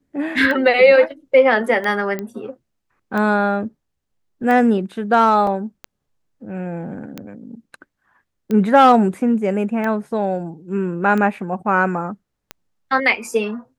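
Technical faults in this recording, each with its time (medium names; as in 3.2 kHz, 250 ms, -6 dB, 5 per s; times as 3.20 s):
tick 45 rpm -13 dBFS
2.19 s: pop -13 dBFS
5.47 s: dropout 2.3 ms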